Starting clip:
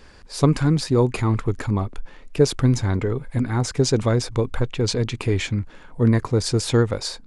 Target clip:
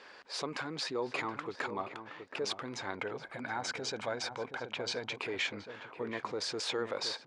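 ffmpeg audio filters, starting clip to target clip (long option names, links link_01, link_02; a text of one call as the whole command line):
ffmpeg -i in.wav -filter_complex "[0:a]asettb=1/sr,asplit=3[link_01][link_02][link_03];[link_01]atrim=end=2.954[link_04];[link_02]atrim=start=2.95:end=5.17,asetpts=PTS-STARTPTS,afade=type=in:duration=0.004:curve=qsin,afade=type=out:start_time=2.216:duration=0.004:curve=qsin,aecho=1:1:1.3:0.41,atrim=end_sample=97902[link_05];[link_03]atrim=start=5.166[link_06];[link_04][link_05]acrossfade=duration=0.004:curve1=hsin:curve2=qsin[link_07];[link_07][link_06]acrossfade=duration=0.004:curve1=qsin:curve2=hsin,alimiter=limit=-21dB:level=0:latency=1:release=42,highpass=510,lowpass=4200,asplit=2[link_08][link_09];[link_09]adelay=723,lowpass=frequency=1300:poles=1,volume=-8.5dB,asplit=2[link_10][link_11];[link_11]adelay=723,lowpass=frequency=1300:poles=1,volume=0.24,asplit=2[link_12][link_13];[link_13]adelay=723,lowpass=frequency=1300:poles=1,volume=0.24[link_14];[link_08][link_10][link_12][link_14]amix=inputs=4:normalize=0" out.wav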